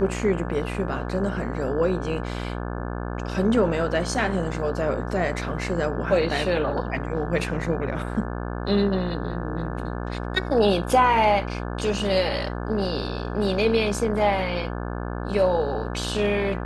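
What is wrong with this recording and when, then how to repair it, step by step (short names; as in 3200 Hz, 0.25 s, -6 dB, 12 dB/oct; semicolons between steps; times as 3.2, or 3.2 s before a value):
buzz 60 Hz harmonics 29 -30 dBFS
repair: de-hum 60 Hz, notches 29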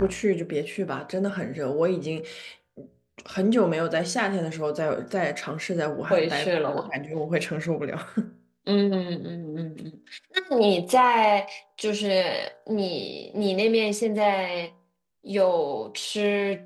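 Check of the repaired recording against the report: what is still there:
none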